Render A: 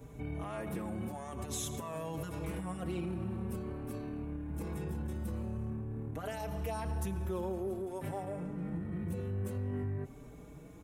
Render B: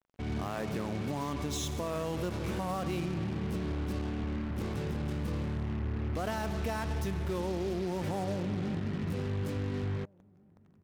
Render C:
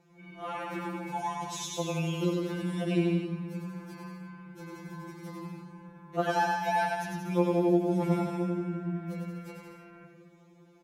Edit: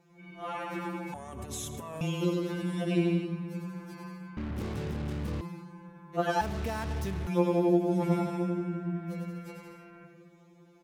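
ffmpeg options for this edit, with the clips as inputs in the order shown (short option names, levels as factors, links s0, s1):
-filter_complex "[1:a]asplit=2[s0][s1];[2:a]asplit=4[s2][s3][s4][s5];[s2]atrim=end=1.142[s6];[0:a]atrim=start=1.138:end=2.012[s7];[s3]atrim=start=2.008:end=4.372[s8];[s0]atrim=start=4.368:end=5.412[s9];[s4]atrim=start=5.408:end=6.412[s10];[s1]atrim=start=6.408:end=7.272[s11];[s5]atrim=start=7.268[s12];[s6][s7]acrossfade=d=0.004:c1=hsin:c2=hsin[s13];[s13][s8]acrossfade=d=0.004:c1=hsin:c2=hsin[s14];[s14][s9]acrossfade=d=0.004:c1=hsin:c2=hsin[s15];[s15][s10]acrossfade=d=0.004:c1=hsin:c2=hsin[s16];[s16][s11]acrossfade=d=0.004:c1=hsin:c2=hsin[s17];[s17][s12]acrossfade=d=0.004:c1=hsin:c2=hsin"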